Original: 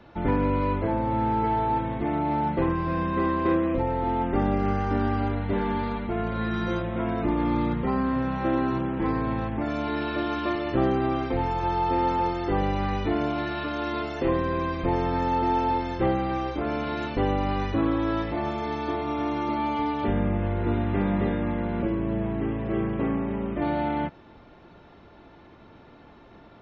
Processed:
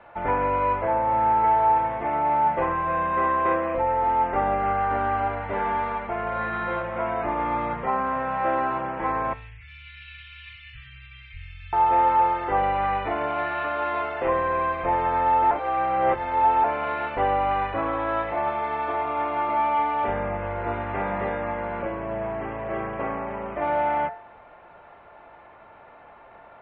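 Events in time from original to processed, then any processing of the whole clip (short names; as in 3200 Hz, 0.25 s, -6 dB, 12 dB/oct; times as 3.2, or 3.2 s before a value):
9.33–11.73 inverse Chebyshev band-stop 310–840 Hz, stop band 70 dB
15.51–16.64 reverse
whole clip: LPF 2500 Hz 24 dB/oct; resonant low shelf 440 Hz -12.5 dB, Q 1.5; de-hum 63.35 Hz, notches 33; gain +5 dB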